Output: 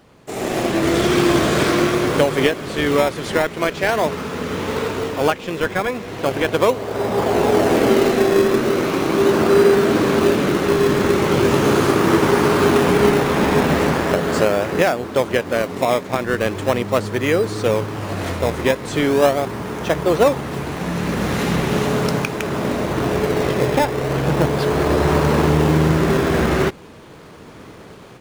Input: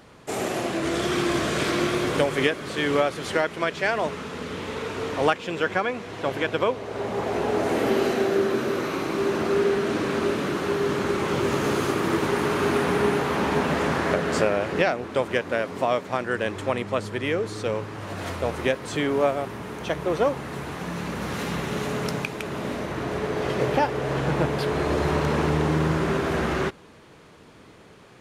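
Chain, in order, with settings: level rider gain up to 10.5 dB; in parallel at -6 dB: decimation with a swept rate 20×, swing 100% 0.39 Hz; on the sum: trim -3.5 dB

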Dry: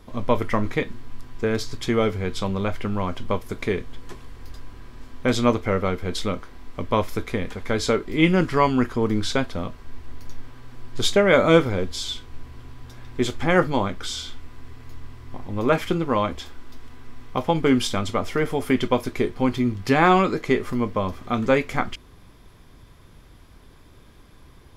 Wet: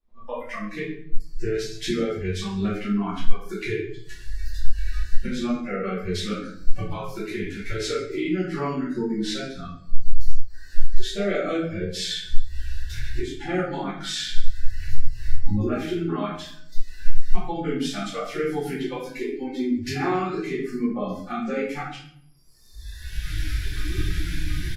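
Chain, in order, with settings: recorder AGC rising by 19 dB/s; dynamic bell 290 Hz, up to +6 dB, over -35 dBFS, Q 2.9; compression 16:1, threshold -16 dBFS, peak gain reduction 10 dB; harmony voices -12 st -14 dB, +3 st -13 dB; treble shelf 9.9 kHz -4.5 dB; feedback delay 138 ms, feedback 44%, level -19.5 dB; spectral noise reduction 27 dB; simulated room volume 100 m³, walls mixed, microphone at 2.4 m; trim -14 dB

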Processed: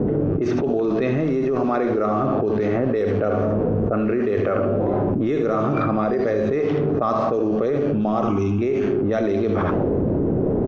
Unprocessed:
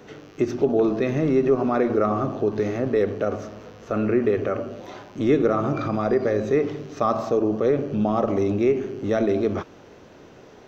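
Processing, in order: level-controlled noise filter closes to 300 Hz, open at -15 dBFS; 8.22–8.62 s: static phaser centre 2.8 kHz, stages 8; on a send: early reflections 69 ms -12.5 dB, 80 ms -12 dB; on the sum: level flattener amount 100%; trim -5.5 dB

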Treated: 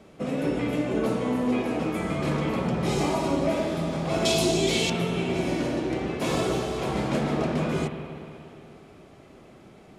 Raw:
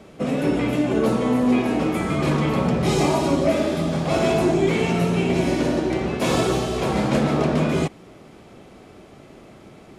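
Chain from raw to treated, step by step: 4.25–4.90 s: resonant high shelf 2.6 kHz +13.5 dB, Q 1.5; spring tank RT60 2.9 s, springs 55/59 ms, chirp 70 ms, DRR 6 dB; trim -6 dB

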